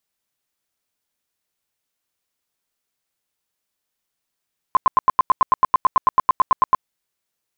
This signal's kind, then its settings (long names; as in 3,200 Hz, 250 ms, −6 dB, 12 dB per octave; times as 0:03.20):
tone bursts 1,040 Hz, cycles 19, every 0.11 s, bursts 19, −9 dBFS